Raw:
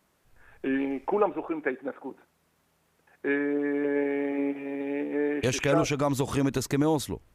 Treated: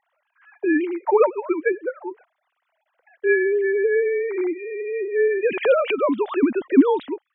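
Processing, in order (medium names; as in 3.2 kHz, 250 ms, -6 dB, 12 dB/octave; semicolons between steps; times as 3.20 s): formants replaced by sine waves; trim +7 dB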